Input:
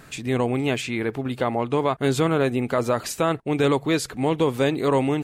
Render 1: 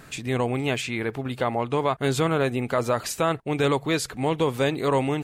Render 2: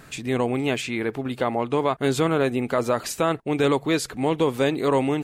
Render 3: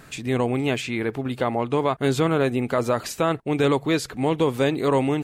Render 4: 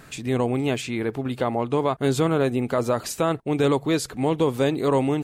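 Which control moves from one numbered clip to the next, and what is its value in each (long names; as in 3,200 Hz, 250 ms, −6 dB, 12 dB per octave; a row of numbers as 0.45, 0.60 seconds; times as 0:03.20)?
dynamic equaliser, frequency: 290, 100, 9,400, 2,100 Hertz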